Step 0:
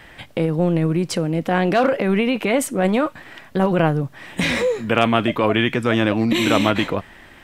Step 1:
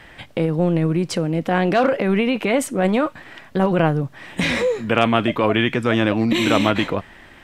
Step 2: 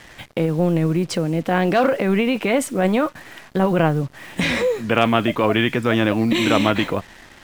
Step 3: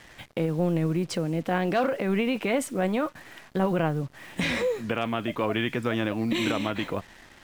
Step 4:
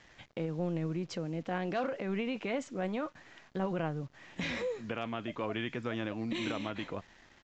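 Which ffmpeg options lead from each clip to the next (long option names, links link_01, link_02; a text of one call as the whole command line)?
ffmpeg -i in.wav -af "highshelf=frequency=12000:gain=-8.5" out.wav
ffmpeg -i in.wav -af "acrusher=bits=6:mix=0:aa=0.5" out.wav
ffmpeg -i in.wav -af "alimiter=limit=-7.5dB:level=0:latency=1:release=349,volume=-6.5dB" out.wav
ffmpeg -i in.wav -af "aresample=16000,aresample=44100,volume=-9dB" out.wav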